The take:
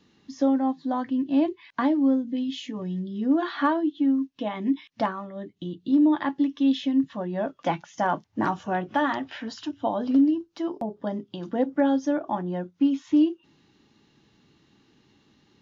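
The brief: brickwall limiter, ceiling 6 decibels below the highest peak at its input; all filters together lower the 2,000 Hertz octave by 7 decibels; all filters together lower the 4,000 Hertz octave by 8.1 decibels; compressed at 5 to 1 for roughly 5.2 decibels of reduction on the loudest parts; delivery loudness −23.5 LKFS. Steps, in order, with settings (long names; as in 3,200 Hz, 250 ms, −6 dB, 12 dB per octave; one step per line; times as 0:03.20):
parametric band 2,000 Hz −8 dB
parametric band 4,000 Hz −7.5 dB
downward compressor 5 to 1, threshold −22 dBFS
level +7.5 dB
brickwall limiter −14 dBFS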